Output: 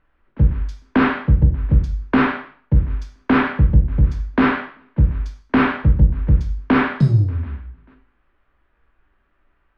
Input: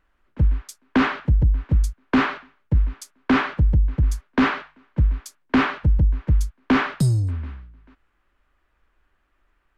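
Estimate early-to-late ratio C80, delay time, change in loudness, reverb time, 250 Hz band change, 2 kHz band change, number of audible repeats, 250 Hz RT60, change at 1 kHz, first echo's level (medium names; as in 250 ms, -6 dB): 13.0 dB, no echo, +3.5 dB, 0.45 s, +3.5 dB, +2.5 dB, no echo, 0.45 s, +3.0 dB, no echo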